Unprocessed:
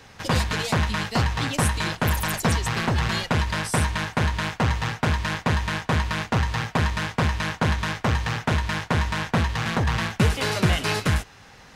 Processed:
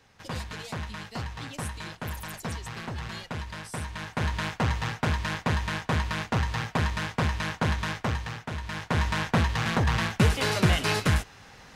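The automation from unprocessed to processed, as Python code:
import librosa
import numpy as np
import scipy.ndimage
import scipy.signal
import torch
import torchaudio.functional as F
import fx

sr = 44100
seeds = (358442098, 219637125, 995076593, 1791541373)

y = fx.gain(x, sr, db=fx.line((3.85, -12.5), (4.32, -4.0), (7.96, -4.0), (8.51, -12.5), (9.05, -1.5)))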